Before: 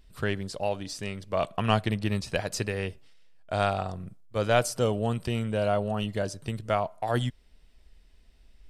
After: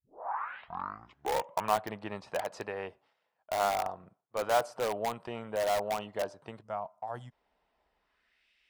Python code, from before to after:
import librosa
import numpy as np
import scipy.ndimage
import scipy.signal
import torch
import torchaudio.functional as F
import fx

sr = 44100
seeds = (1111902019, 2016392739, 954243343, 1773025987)

p1 = fx.tape_start_head(x, sr, length_s=1.75)
p2 = fx.filter_sweep_bandpass(p1, sr, from_hz=880.0, to_hz=2500.0, start_s=7.96, end_s=8.48, q=2.2)
p3 = fx.spec_box(p2, sr, start_s=6.62, length_s=0.7, low_hz=230.0, high_hz=4800.0, gain_db=-11)
p4 = (np.mod(10.0 ** (28.5 / 20.0) * p3 + 1.0, 2.0) - 1.0) / 10.0 ** (28.5 / 20.0)
p5 = p3 + (p4 * 10.0 ** (-5.5 / 20.0))
y = p5 * 10.0 ** (1.5 / 20.0)